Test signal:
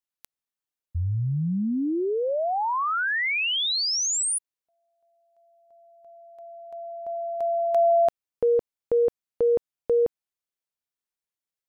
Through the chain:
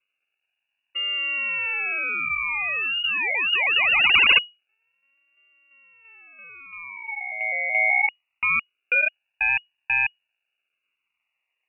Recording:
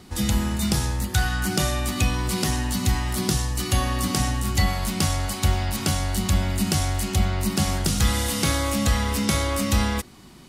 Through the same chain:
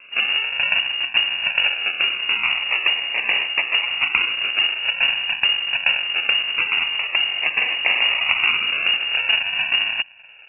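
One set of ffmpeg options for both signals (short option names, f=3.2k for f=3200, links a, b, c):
-af "crystalizer=i=2.5:c=0,acrusher=samples=42:mix=1:aa=0.000001:lfo=1:lforange=25.2:lforate=0.23,lowpass=f=2.5k:t=q:w=0.5098,lowpass=f=2.5k:t=q:w=0.6013,lowpass=f=2.5k:t=q:w=0.9,lowpass=f=2.5k:t=q:w=2.563,afreqshift=-2900,volume=-1dB"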